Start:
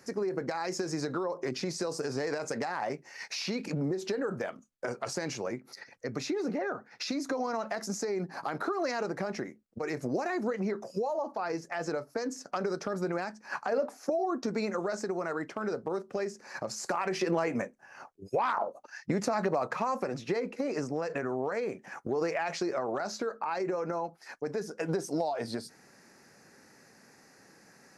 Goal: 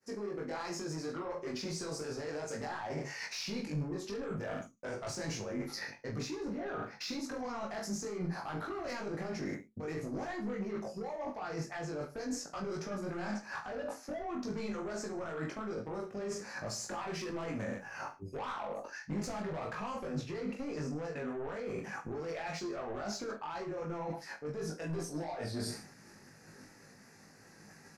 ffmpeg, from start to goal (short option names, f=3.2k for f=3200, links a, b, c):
-af "flanger=delay=17.5:depth=2.7:speed=2.8,agate=range=-33dB:threshold=-53dB:ratio=3:detection=peak,asoftclip=type=tanh:threshold=-31.5dB,aecho=1:1:20|44|72.8|107.4|148.8:0.631|0.398|0.251|0.158|0.1,areverse,acompressor=threshold=-48dB:ratio=8,areverse,asubboost=boost=2:cutoff=240,volume=11dB"